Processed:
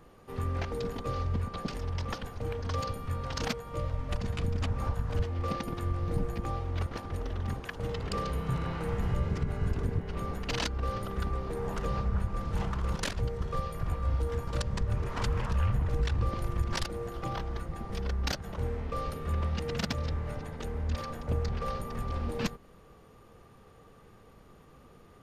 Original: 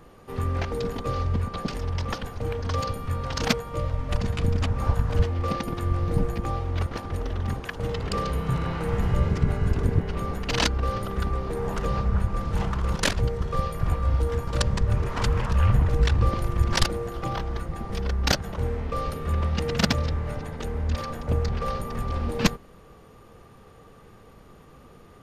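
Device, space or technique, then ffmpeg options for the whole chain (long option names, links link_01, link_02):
soft clipper into limiter: -af "asoftclip=type=tanh:threshold=-6dB,alimiter=limit=-14.5dB:level=0:latency=1:release=198,volume=-5.5dB"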